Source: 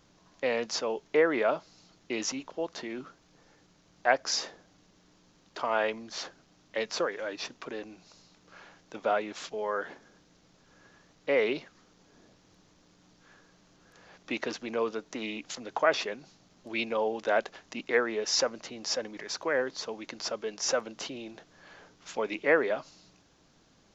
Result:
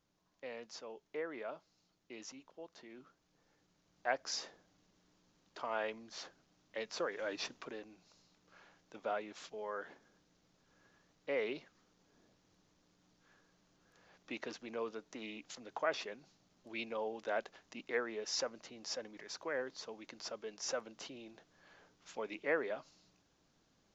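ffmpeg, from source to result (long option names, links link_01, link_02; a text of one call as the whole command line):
ffmpeg -i in.wav -af "volume=-3dB,afade=type=in:start_time=2.78:duration=1.54:silence=0.421697,afade=type=in:start_time=6.95:duration=0.41:silence=0.446684,afade=type=out:start_time=7.36:duration=0.48:silence=0.421697" out.wav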